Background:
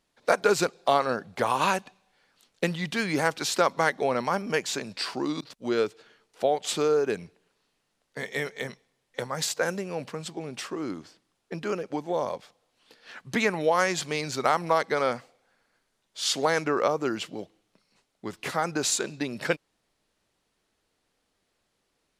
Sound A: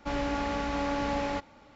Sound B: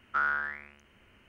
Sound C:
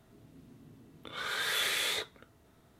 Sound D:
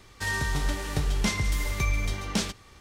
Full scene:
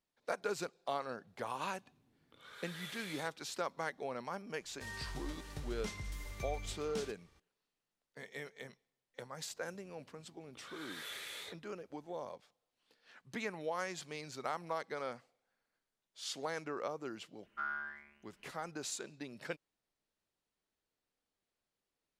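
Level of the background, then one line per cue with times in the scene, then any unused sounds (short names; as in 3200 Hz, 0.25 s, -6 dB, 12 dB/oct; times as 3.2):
background -15.5 dB
1.27 add C -17.5 dB
4.6 add D -17 dB
9.5 add C -14.5 dB
17.43 add B -14.5 dB + comb 5 ms, depth 96%
not used: A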